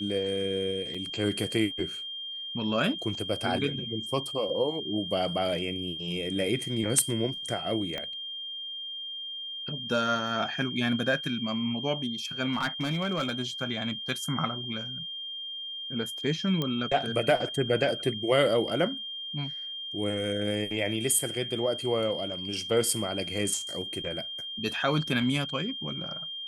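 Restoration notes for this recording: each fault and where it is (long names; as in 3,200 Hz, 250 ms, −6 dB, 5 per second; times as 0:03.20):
whistle 3,200 Hz −35 dBFS
0:00.94: drop-out 5 ms
0:07.98: click −20 dBFS
0:12.53–0:13.32: clipping −23.5 dBFS
0:16.62: click −16 dBFS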